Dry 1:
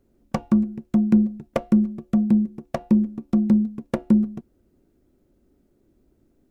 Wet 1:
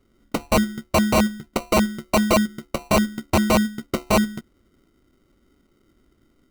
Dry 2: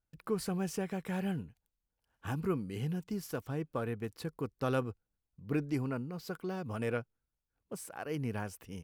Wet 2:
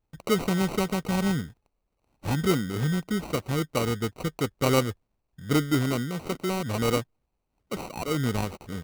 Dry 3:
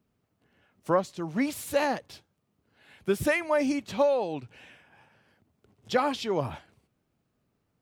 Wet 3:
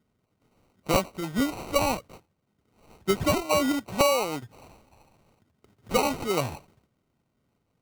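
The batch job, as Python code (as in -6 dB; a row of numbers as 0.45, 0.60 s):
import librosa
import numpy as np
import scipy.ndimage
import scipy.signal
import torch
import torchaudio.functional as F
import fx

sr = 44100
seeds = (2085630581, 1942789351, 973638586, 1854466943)

y = fx.sample_hold(x, sr, seeds[0], rate_hz=1700.0, jitter_pct=0)
y = (np.mod(10.0 ** (13.5 / 20.0) * y + 1.0, 2.0) - 1.0) / 10.0 ** (13.5 / 20.0)
y = librosa.util.normalize(y) * 10.0 ** (-12 / 20.0)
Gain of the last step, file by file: +1.5, +9.5, +1.5 dB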